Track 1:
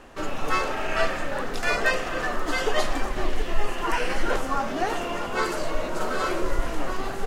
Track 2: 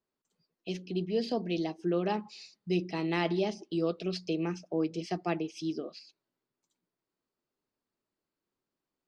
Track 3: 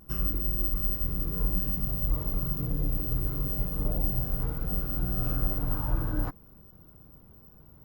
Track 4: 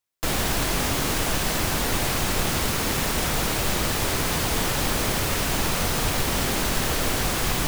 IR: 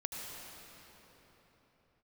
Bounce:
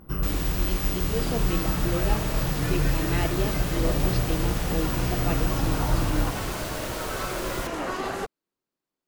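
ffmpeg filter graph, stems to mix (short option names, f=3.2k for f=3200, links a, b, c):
-filter_complex "[0:a]highpass=47,acompressor=threshold=-27dB:ratio=6,adelay=1000,volume=1.5dB,asplit=2[a][b];[b]volume=-10dB[c];[1:a]volume=0dB,asplit=2[d][e];[2:a]highshelf=f=4.4k:g=-11.5,acontrast=46,volume=-1.5dB,asplit=2[f][g];[g]volume=-4.5dB[h];[3:a]volume=-10dB[i];[e]apad=whole_len=364410[j];[a][j]sidechaincompress=threshold=-54dB:ratio=8:attack=16:release=1300[k];[4:a]atrim=start_sample=2205[l];[c][h]amix=inputs=2:normalize=0[m];[m][l]afir=irnorm=-1:irlink=0[n];[k][d][f][i][n]amix=inputs=5:normalize=0,lowshelf=f=150:g=-4.5"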